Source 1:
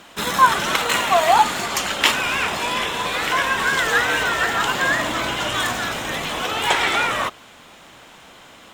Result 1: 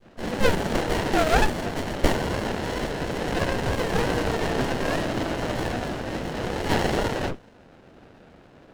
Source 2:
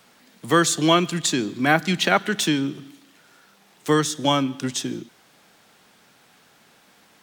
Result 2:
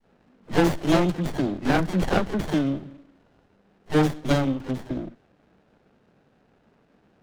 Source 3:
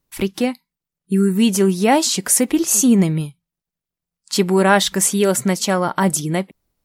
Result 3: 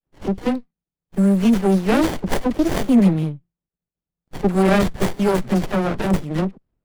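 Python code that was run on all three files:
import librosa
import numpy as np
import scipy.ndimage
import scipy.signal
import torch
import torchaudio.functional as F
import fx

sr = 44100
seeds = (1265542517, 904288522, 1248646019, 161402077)

y = fx.env_lowpass(x, sr, base_hz=1500.0, full_db=-12.5)
y = fx.dispersion(y, sr, late='lows', ms=69.0, hz=700.0)
y = fx.running_max(y, sr, window=33)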